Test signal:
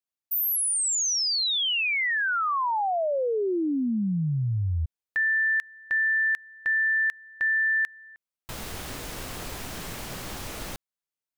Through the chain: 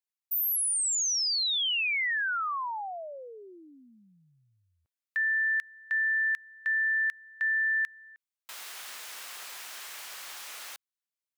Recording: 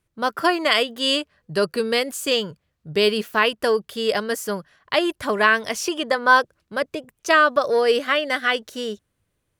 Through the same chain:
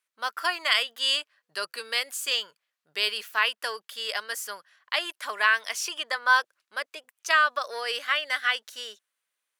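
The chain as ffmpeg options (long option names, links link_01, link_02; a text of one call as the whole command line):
ffmpeg -i in.wav -af "highpass=1200,volume=-2.5dB" out.wav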